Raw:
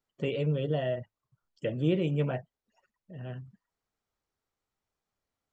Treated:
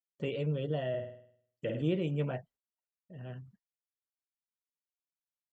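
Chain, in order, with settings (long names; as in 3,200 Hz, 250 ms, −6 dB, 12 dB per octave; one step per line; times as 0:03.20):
downward expander −51 dBFS
0:00.89–0:01.82: flutter between parallel walls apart 8.8 metres, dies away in 0.62 s
level −4 dB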